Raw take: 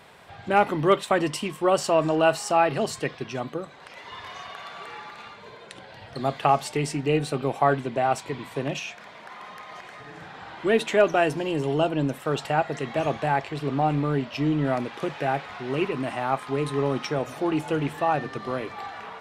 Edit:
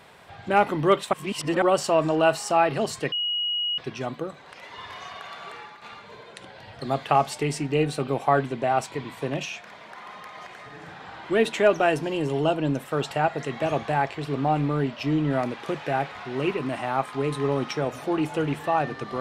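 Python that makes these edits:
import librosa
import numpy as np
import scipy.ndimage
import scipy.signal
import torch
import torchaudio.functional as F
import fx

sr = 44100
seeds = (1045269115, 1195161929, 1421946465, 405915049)

y = fx.edit(x, sr, fx.reverse_span(start_s=1.13, length_s=0.49),
    fx.insert_tone(at_s=3.12, length_s=0.66, hz=2900.0, db=-23.5),
    fx.fade_out_to(start_s=4.85, length_s=0.31, floor_db=-8.0), tone=tone)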